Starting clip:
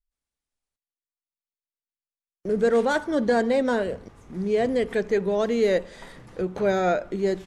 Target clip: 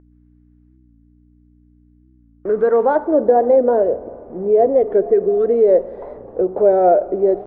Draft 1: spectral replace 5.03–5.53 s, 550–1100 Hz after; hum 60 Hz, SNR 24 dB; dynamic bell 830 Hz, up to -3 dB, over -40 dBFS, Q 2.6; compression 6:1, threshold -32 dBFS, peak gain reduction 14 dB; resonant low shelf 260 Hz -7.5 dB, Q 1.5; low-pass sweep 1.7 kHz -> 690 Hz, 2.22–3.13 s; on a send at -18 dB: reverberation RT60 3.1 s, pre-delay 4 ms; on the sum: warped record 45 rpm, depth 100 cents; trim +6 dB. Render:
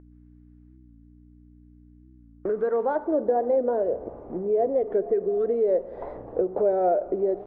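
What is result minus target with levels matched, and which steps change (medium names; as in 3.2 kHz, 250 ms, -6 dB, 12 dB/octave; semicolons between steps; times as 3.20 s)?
compression: peak gain reduction +10 dB
change: compression 6:1, threshold -20 dBFS, peak gain reduction 4 dB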